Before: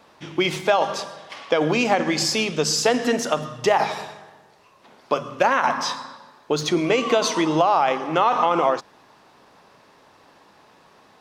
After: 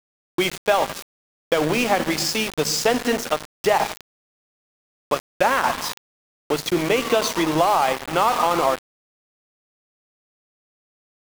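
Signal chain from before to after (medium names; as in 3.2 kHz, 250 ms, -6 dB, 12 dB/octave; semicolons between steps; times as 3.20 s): small samples zeroed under -23 dBFS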